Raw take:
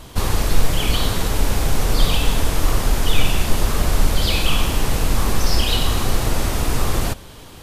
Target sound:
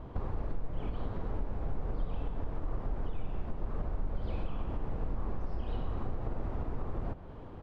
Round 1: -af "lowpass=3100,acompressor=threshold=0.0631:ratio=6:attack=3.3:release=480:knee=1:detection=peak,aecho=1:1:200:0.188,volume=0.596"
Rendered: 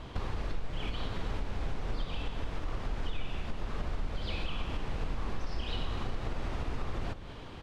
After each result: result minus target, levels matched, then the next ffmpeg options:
4 kHz band +16.5 dB; echo 72 ms late
-af "lowpass=970,acompressor=threshold=0.0631:ratio=6:attack=3.3:release=480:knee=1:detection=peak,aecho=1:1:200:0.188,volume=0.596"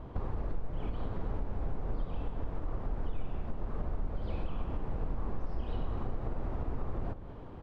echo 72 ms late
-af "lowpass=970,acompressor=threshold=0.0631:ratio=6:attack=3.3:release=480:knee=1:detection=peak,aecho=1:1:128:0.188,volume=0.596"

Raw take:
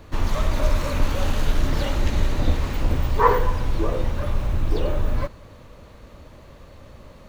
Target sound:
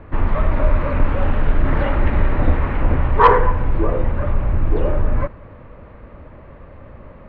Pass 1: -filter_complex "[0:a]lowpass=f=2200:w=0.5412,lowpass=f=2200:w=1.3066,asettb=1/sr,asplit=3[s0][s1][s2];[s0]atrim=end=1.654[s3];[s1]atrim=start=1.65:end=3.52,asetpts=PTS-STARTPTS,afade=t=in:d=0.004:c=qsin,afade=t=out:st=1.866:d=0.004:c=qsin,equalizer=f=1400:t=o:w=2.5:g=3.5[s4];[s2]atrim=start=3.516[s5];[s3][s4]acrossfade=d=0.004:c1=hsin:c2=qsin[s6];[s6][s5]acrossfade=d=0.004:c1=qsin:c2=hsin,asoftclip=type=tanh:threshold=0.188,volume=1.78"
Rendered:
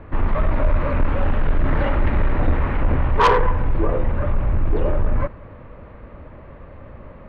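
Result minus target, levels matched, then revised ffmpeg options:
saturation: distortion +10 dB
-filter_complex "[0:a]lowpass=f=2200:w=0.5412,lowpass=f=2200:w=1.3066,asettb=1/sr,asplit=3[s0][s1][s2];[s0]atrim=end=1.654[s3];[s1]atrim=start=1.65:end=3.52,asetpts=PTS-STARTPTS,afade=t=in:d=0.004:c=qsin,afade=t=out:st=1.866:d=0.004:c=qsin,equalizer=f=1400:t=o:w=2.5:g=3.5[s4];[s2]atrim=start=3.516[s5];[s3][s4]acrossfade=d=0.004:c1=hsin:c2=qsin[s6];[s6][s5]acrossfade=d=0.004:c1=qsin:c2=hsin,asoftclip=type=tanh:threshold=0.531,volume=1.78"

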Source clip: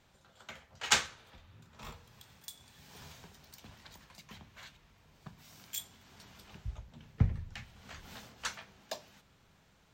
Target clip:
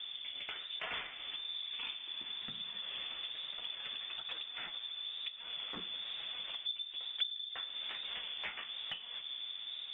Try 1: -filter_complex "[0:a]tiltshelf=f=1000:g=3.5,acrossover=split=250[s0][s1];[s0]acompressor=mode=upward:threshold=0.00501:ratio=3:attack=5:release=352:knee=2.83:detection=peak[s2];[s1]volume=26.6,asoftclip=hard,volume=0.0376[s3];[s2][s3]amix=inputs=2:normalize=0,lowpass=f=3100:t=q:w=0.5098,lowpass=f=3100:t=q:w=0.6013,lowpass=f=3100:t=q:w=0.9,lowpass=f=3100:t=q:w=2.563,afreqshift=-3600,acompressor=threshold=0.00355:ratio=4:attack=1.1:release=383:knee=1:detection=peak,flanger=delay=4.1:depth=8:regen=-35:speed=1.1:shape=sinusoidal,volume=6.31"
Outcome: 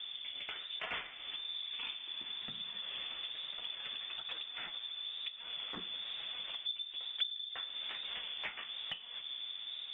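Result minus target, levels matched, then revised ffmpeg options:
overload inside the chain: distortion -4 dB
-filter_complex "[0:a]tiltshelf=f=1000:g=3.5,acrossover=split=250[s0][s1];[s0]acompressor=mode=upward:threshold=0.00501:ratio=3:attack=5:release=352:knee=2.83:detection=peak[s2];[s1]volume=59.6,asoftclip=hard,volume=0.0168[s3];[s2][s3]amix=inputs=2:normalize=0,lowpass=f=3100:t=q:w=0.5098,lowpass=f=3100:t=q:w=0.6013,lowpass=f=3100:t=q:w=0.9,lowpass=f=3100:t=q:w=2.563,afreqshift=-3600,acompressor=threshold=0.00355:ratio=4:attack=1.1:release=383:knee=1:detection=peak,flanger=delay=4.1:depth=8:regen=-35:speed=1.1:shape=sinusoidal,volume=6.31"

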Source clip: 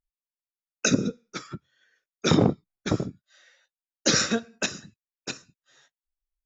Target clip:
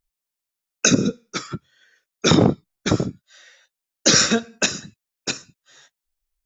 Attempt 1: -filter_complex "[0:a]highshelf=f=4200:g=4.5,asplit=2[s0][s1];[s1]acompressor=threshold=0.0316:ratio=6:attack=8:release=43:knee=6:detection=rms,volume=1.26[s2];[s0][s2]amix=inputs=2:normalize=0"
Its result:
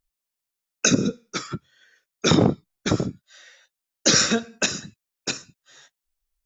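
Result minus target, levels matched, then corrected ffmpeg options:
compression: peak gain reduction +8 dB
-filter_complex "[0:a]highshelf=f=4200:g=4.5,asplit=2[s0][s1];[s1]acompressor=threshold=0.0944:ratio=6:attack=8:release=43:knee=6:detection=rms,volume=1.26[s2];[s0][s2]amix=inputs=2:normalize=0"

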